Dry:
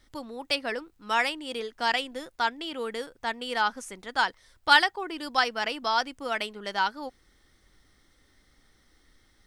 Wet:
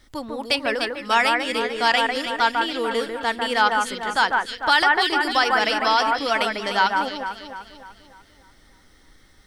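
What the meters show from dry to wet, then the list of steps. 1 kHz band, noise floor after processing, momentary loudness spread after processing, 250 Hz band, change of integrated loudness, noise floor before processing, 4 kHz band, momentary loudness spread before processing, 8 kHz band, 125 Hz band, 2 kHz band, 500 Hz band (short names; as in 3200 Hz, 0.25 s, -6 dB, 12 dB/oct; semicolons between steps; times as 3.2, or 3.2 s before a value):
+8.0 dB, -54 dBFS, 8 LU, +8.5 dB, +7.0 dB, -65 dBFS, +6.5 dB, 12 LU, +7.5 dB, n/a, +7.0 dB, +8.5 dB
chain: echo with dull and thin repeats by turns 0.149 s, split 2200 Hz, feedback 67%, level -3.5 dB; maximiser +13 dB; gain -6 dB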